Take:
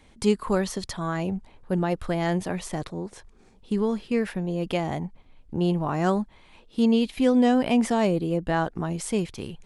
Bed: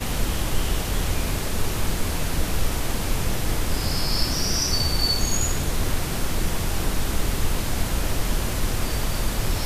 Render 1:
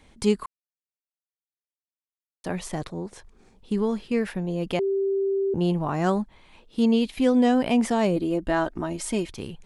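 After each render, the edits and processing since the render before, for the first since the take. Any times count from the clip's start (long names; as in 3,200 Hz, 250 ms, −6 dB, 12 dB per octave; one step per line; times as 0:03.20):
0:00.46–0:02.44: silence
0:04.79–0:05.54: beep over 391 Hz −21 dBFS
0:08.16–0:09.32: comb filter 3.2 ms, depth 53%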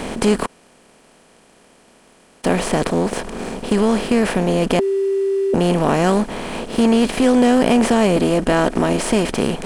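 compressor on every frequency bin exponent 0.4
leveller curve on the samples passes 1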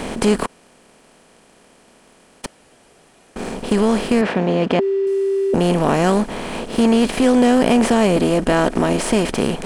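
0:02.46–0:03.36: fill with room tone
0:04.21–0:05.07: band-pass filter 110–3,700 Hz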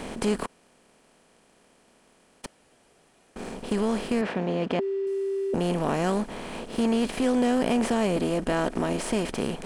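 level −9.5 dB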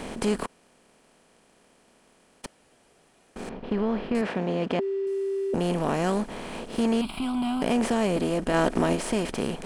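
0:03.49–0:04.15: high-frequency loss of the air 310 metres
0:07.01–0:07.62: phaser with its sweep stopped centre 1,800 Hz, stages 6
0:08.54–0:08.95: clip gain +3.5 dB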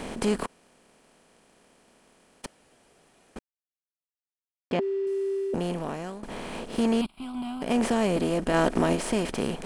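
0:03.39–0:04.71: silence
0:05.31–0:06.23: fade out, to −18 dB
0:07.06–0:07.74: expander for the loud parts 2.5 to 1, over −37 dBFS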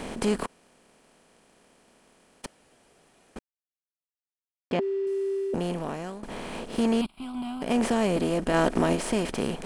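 no processing that can be heard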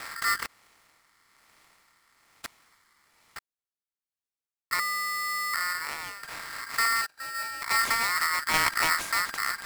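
rotating-speaker cabinet horn 1.1 Hz, later 6.3 Hz, at 0:06.43
ring modulator with a square carrier 1,600 Hz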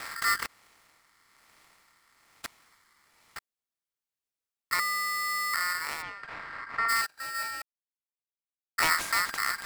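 0:06.01–0:06.88: low-pass filter 3,100 Hz → 1,700 Hz
0:07.62–0:08.78: silence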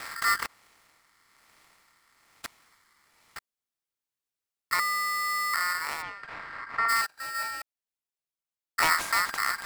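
dynamic equaliser 900 Hz, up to +4 dB, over −41 dBFS, Q 1.1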